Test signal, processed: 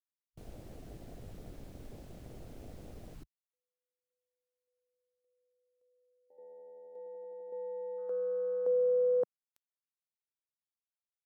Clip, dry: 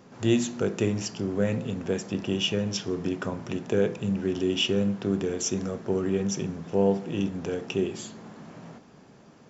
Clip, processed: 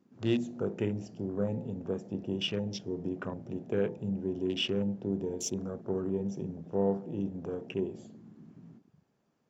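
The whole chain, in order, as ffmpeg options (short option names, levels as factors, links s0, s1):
-af "afwtdn=0.0141,volume=0.501"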